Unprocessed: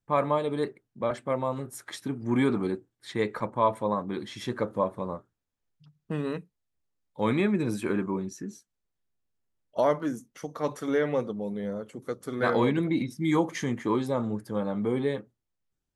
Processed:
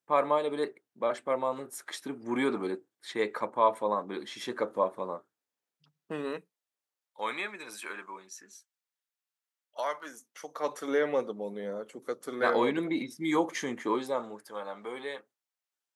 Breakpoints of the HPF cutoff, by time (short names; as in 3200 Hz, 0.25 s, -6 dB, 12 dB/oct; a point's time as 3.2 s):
6.2 s 350 Hz
7.59 s 1100 Hz
9.93 s 1100 Hz
10.93 s 340 Hz
13.87 s 340 Hz
14.54 s 780 Hz